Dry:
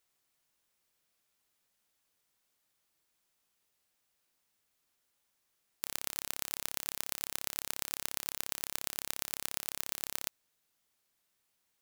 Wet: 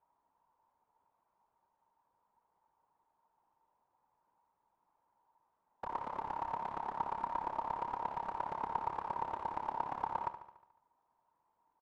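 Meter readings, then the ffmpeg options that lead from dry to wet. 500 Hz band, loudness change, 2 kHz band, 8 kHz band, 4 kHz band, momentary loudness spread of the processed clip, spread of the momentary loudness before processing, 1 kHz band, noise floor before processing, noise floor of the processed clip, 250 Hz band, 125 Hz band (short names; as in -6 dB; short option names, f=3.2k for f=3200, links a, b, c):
+5.5 dB, -2.5 dB, -7.0 dB, under -35 dB, under -20 dB, 3 LU, 1 LU, +15.5 dB, -79 dBFS, -82 dBFS, +3.0 dB, +2.0 dB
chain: -af "afftfilt=real='hypot(re,im)*cos(2*PI*random(0))':imag='hypot(re,im)*sin(2*PI*random(1))':win_size=512:overlap=0.75,lowpass=f=930:t=q:w=11,aecho=1:1:72|144|216|288|360|432|504:0.266|0.154|0.0895|0.0519|0.0301|0.0175|0.0101,volume=7.5dB"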